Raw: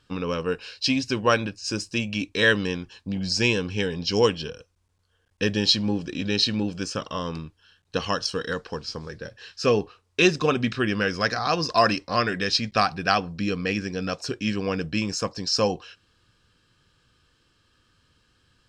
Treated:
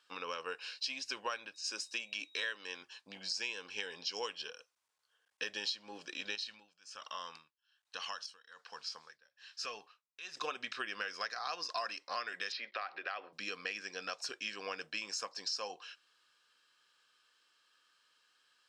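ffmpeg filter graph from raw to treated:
ffmpeg -i in.wav -filter_complex "[0:a]asettb=1/sr,asplit=3[link_01][link_02][link_03];[link_01]atrim=end=1.544[link_04];[link_02]atrim=start=1.54:end=2.82,asetpts=PTS-STARTPTS,afade=type=in:duration=0.004:curve=qsin,afade=type=out:start_time=1.276:duration=0.004:curve=qsin,highpass=190,aeval=exprs='val(0)+0.00158*sin(2*PI*3800*n/s)':channel_layout=same[link_05];[link_03]atrim=start=2.816[link_06];[link_04][link_05]acrossfade=duration=0.004:curve1=hsin:curve2=qsin[link_07];[link_07][link_06]acrossfade=duration=0.004:curve1=qsin:curve2=hsin,asettb=1/sr,asplit=3[link_08][link_09][link_10];[link_08]atrim=end=6.354[link_11];[link_09]atrim=start=6.35:end=10.37,asetpts=PTS-STARTPTS,afade=type=in:duration=0.004:curve=qsin,afade=type=out:start_time=4.016:duration=0.004:curve=qsin,equalizer=frequency=380:width=1.2:gain=-8.5,acompressor=threshold=-31dB:ratio=2.5:attack=3.2:release=140:knee=1:detection=peak,tremolo=f=1.2:d=0.92[link_12];[link_10]atrim=start=10.366[link_13];[link_11][link_12]acrossfade=duration=0.004:curve1=hsin:curve2=qsin[link_14];[link_14][link_13]acrossfade=duration=0.004:curve1=qsin:curve2=hsin,asettb=1/sr,asplit=3[link_15][link_16][link_17];[link_15]atrim=end=12.524[link_18];[link_16]atrim=start=12.52:end=13.33,asetpts=PTS-STARTPTS,afade=type=in:duration=0.004:curve=qsin,afade=type=out:start_time=0.806:duration=0.004:curve=qsin,highpass=frequency=230:width=0.5412,highpass=frequency=230:width=1.3066,equalizer=frequency=360:width_type=q:width=4:gain=8,equalizer=frequency=560:width_type=q:width=4:gain=8,equalizer=frequency=1300:width_type=q:width=4:gain=3,equalizer=frequency=2000:width_type=q:width=4:gain=8,lowpass=frequency=3900:width=0.5412,lowpass=frequency=3900:width=1.3066,acompressor=threshold=-30dB:ratio=2.5:attack=3.2:release=140:knee=1:detection=peak[link_19];[link_17]atrim=start=13.326[link_20];[link_18][link_19]acrossfade=duration=0.004:curve1=hsin:curve2=qsin[link_21];[link_21][link_20]acrossfade=duration=0.004:curve1=qsin:curve2=hsin,highpass=830,acompressor=threshold=-31dB:ratio=6,volume=-4.5dB" out.wav

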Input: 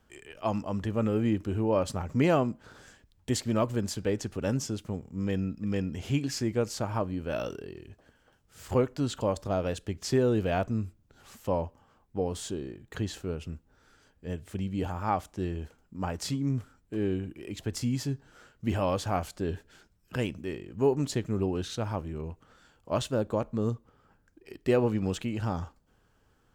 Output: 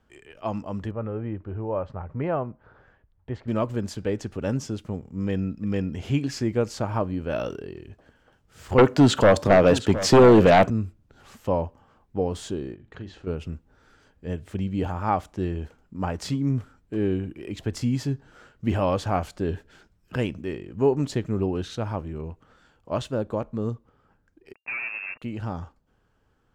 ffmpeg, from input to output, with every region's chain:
ffmpeg -i in.wav -filter_complex "[0:a]asettb=1/sr,asplit=3[link_01][link_02][link_03];[link_01]atrim=end=0.914[link_04];[link_02]atrim=start=0.91:end=3.48,asetpts=PTS-STARTPTS,afade=type=in:duration=0.004:curve=qsin,afade=type=out:start_time=2.566:duration=0.004:curve=qsin,lowpass=1500,equalizer=frequency=250:width=1.2:gain=-8.5[link_05];[link_03]atrim=start=3.476[link_06];[link_04][link_05]acrossfade=duration=0.004:curve1=hsin:curve2=qsin[link_07];[link_07][link_06]acrossfade=duration=0.004:curve1=qsin:curve2=hsin,asettb=1/sr,asplit=3[link_08][link_09][link_10];[link_08]atrim=end=8.784[link_11];[link_09]atrim=start=8.78:end=10.7,asetpts=PTS-STARTPTS,afade=type=in:duration=0.004:curve=qsin,afade=type=out:start_time=1.916:duration=0.004:curve=qsin,highpass=120,aeval=exprs='0.2*sin(PI/2*2.51*val(0)/0.2)':channel_layout=same,aecho=1:1:716:0.2,atrim=end_sample=84672[link_12];[link_10]atrim=start=10.696[link_13];[link_11][link_12]acrossfade=duration=0.004:curve1=hsin:curve2=qsin[link_14];[link_14][link_13]acrossfade=duration=0.004:curve1=qsin:curve2=hsin,asettb=1/sr,asplit=3[link_15][link_16][link_17];[link_15]atrim=end=12.754[link_18];[link_16]atrim=start=12.75:end=13.27,asetpts=PTS-STARTPTS,afade=type=in:duration=0.004:curve=qsin,afade=type=out:start_time=0.516:duration=0.004:curve=qsin,lowpass=4500,acompressor=threshold=-58dB:ratio=1.5:attack=3.2:release=140:knee=1:detection=peak,asplit=2[link_19][link_20];[link_20]adelay=42,volume=-11dB[link_21];[link_19][link_21]amix=inputs=2:normalize=0,atrim=end_sample=22932[link_22];[link_17]atrim=start=13.266[link_23];[link_18][link_22]acrossfade=duration=0.004:curve1=hsin:curve2=qsin[link_24];[link_24][link_23]acrossfade=duration=0.004:curve1=qsin:curve2=hsin,asettb=1/sr,asplit=3[link_25][link_26][link_27];[link_25]atrim=end=24.534[link_28];[link_26]atrim=start=24.53:end=25.22,asetpts=PTS-STARTPTS,afade=type=in:duration=0.004:curve=qsin,afade=type=out:start_time=0.686:duration=0.004:curve=qsin,acrusher=bits=4:mix=0:aa=0.5,volume=27.5dB,asoftclip=hard,volume=-27.5dB,lowpass=frequency=2400:width_type=q:width=0.5098,lowpass=frequency=2400:width_type=q:width=0.6013,lowpass=frequency=2400:width_type=q:width=0.9,lowpass=frequency=2400:width_type=q:width=2.563,afreqshift=-2800[link_29];[link_27]atrim=start=25.216[link_30];[link_28][link_29]acrossfade=duration=0.004:curve1=hsin:curve2=qsin[link_31];[link_31][link_30]acrossfade=duration=0.004:curve1=qsin:curve2=hsin,aemphasis=mode=reproduction:type=cd,dynaudnorm=framelen=450:gausssize=21:maxgain=4.5dB" out.wav

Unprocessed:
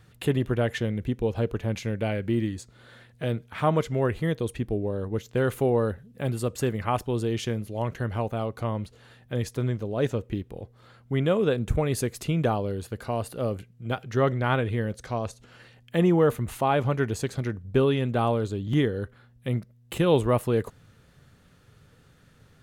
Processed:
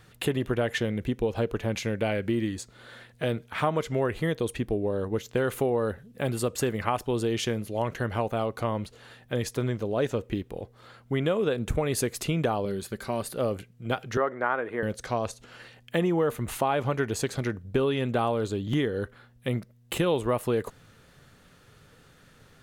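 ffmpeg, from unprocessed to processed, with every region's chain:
ffmpeg -i in.wav -filter_complex "[0:a]asettb=1/sr,asplit=3[link_01][link_02][link_03];[link_01]atrim=end=12.654[link_04];[link_02]atrim=start=12.65:end=13.35,asetpts=PTS-STARTPTS,afade=type=in:duration=0.004:curve=qsin,afade=type=out:start_time=0.696:duration=0.004:curve=qsin,equalizer=frequency=720:width=0.82:gain=-6,bandreject=frequency=2800:width=9.8,aecho=1:1:5.2:0.42,atrim=end_sample=30870[link_05];[link_03]atrim=start=13.346[link_06];[link_04][link_05]acrossfade=duration=0.004:curve1=hsin:curve2=qsin[link_07];[link_07][link_06]acrossfade=duration=0.004:curve1=qsin:curve2=hsin,asettb=1/sr,asplit=3[link_08][link_09][link_10];[link_08]atrim=end=14.174[link_11];[link_09]atrim=start=14.17:end=14.83,asetpts=PTS-STARTPTS,afade=type=in:duration=0.004:curve=qsin,afade=type=out:start_time=0.656:duration=0.004:curve=qsin,highpass=340,highshelf=frequency=2300:width_type=q:width=1.5:gain=-12.5[link_12];[link_10]atrim=start=14.826[link_13];[link_11][link_12]acrossfade=duration=0.004:curve1=hsin:curve2=qsin[link_14];[link_14][link_13]acrossfade=duration=0.004:curve1=qsin:curve2=hsin,equalizer=frequency=84:width_type=o:width=2.9:gain=-7,acompressor=threshold=-27dB:ratio=4,volume=4.5dB" out.wav

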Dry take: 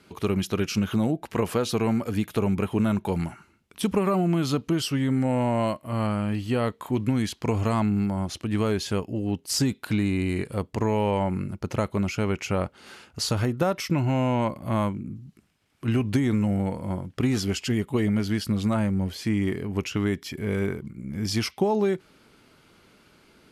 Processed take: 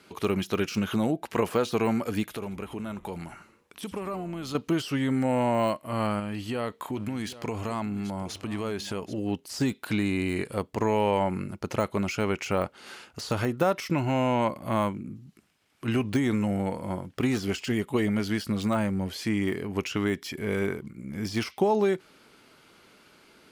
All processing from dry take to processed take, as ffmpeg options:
ffmpeg -i in.wav -filter_complex "[0:a]asettb=1/sr,asplit=3[link_01][link_02][link_03];[link_01]atrim=end=2.234[link_04];[link_02]atrim=start=2.23:end=4.55,asetpts=PTS-STARTPTS,afade=type=in:duration=0.004:curve=qsin,afade=type=out:start_time=2.316:duration=0.004:curve=qsin,acompressor=threshold=-37dB:ratio=2:attack=3.2:release=140:knee=1:detection=peak,asplit=6[link_05][link_06][link_07][link_08][link_09][link_10];[link_06]adelay=82,afreqshift=-130,volume=-17.5dB[link_11];[link_07]adelay=164,afreqshift=-260,volume=-22.9dB[link_12];[link_08]adelay=246,afreqshift=-390,volume=-28.2dB[link_13];[link_09]adelay=328,afreqshift=-520,volume=-33.6dB[link_14];[link_10]adelay=410,afreqshift=-650,volume=-38.9dB[link_15];[link_05][link_11][link_12][link_13][link_14][link_15]amix=inputs=6:normalize=0,atrim=end_sample=102312[link_16];[link_03]atrim=start=4.546[link_17];[link_04][link_16]acrossfade=duration=0.004:curve1=hsin:curve2=qsin[link_18];[link_18][link_17]acrossfade=duration=0.004:curve1=qsin:curve2=hsin,asettb=1/sr,asplit=3[link_19][link_20][link_21];[link_19]atrim=end=6.194[link_22];[link_20]atrim=start=6.19:end=9.18,asetpts=PTS-STARTPTS,afade=type=in:duration=0.004:curve=qsin,afade=type=out:start_time=2.986:duration=0.004:curve=qsin,acompressor=threshold=-25dB:ratio=4:attack=3.2:release=140:knee=1:detection=peak,aecho=1:1:777:0.15,atrim=end_sample=131859[link_23];[link_21]atrim=start=9.176[link_24];[link_22][link_23]acrossfade=duration=0.004:curve1=hsin:curve2=qsin[link_25];[link_25][link_24]acrossfade=duration=0.004:curve1=qsin:curve2=hsin,deesser=0.85,lowshelf=frequency=190:gain=-10.5,volume=2dB" out.wav

